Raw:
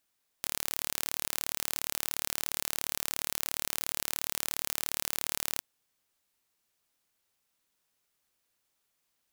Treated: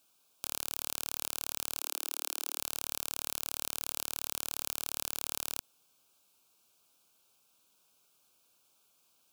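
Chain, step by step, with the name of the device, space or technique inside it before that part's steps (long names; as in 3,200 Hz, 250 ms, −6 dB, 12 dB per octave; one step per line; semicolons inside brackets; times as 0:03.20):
PA system with an anti-feedback notch (high-pass filter 130 Hz 6 dB per octave; Butterworth band-reject 1,900 Hz, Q 2.4; brickwall limiter −16.5 dBFS, peak gain reduction 11 dB)
0:01.80–0:02.58: Butterworth high-pass 300 Hz 36 dB per octave
level +8.5 dB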